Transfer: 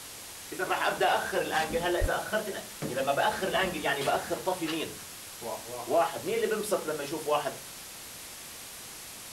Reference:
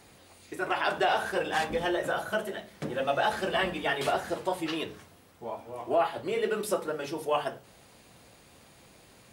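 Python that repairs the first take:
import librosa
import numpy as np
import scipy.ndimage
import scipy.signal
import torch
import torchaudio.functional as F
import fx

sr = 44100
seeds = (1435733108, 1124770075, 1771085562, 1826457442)

y = fx.highpass(x, sr, hz=140.0, slope=24, at=(2.0, 2.12), fade=0.02)
y = fx.noise_reduce(y, sr, print_start_s=7.7, print_end_s=8.2, reduce_db=12.0)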